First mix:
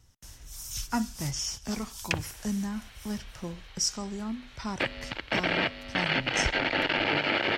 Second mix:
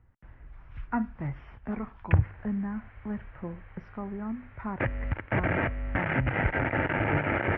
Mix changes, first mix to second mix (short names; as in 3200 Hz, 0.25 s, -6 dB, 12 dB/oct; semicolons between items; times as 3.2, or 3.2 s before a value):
background: remove HPF 230 Hz 12 dB/oct; master: add steep low-pass 2100 Hz 36 dB/oct